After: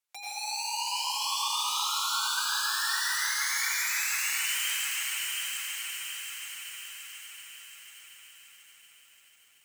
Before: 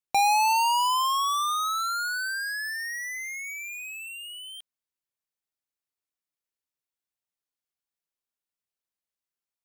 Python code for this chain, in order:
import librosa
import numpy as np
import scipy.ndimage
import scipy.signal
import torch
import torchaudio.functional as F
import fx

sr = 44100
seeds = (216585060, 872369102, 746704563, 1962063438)

p1 = fx.env_lowpass_down(x, sr, base_hz=2400.0, full_db=-22.5)
p2 = scipy.signal.sosfilt(scipy.signal.butter(2, 610.0, 'highpass', fs=sr, output='sos'), p1)
p3 = p2 + 0.66 * np.pad(p2, (int(6.8 * sr / 1000.0), 0))[:len(p2)]
p4 = fx.over_compress(p3, sr, threshold_db=-35.0, ratio=-0.5)
p5 = p3 + F.gain(torch.from_numpy(p4), 1.0).numpy()
p6 = 10.0 ** (-29.5 / 20.0) * (np.abs((p5 / 10.0 ** (-29.5 / 20.0) + 3.0) % 4.0 - 2.0) - 1.0)
p7 = fx.echo_alternate(p6, sr, ms=217, hz=2000.0, feedback_pct=85, wet_db=-10.0)
p8 = fx.rev_plate(p7, sr, seeds[0], rt60_s=3.3, hf_ratio=0.95, predelay_ms=75, drr_db=-9.0)
p9 = fx.echo_crushed(p8, sr, ms=726, feedback_pct=55, bits=10, wet_db=-3)
y = F.gain(torch.from_numpy(p9), -7.5).numpy()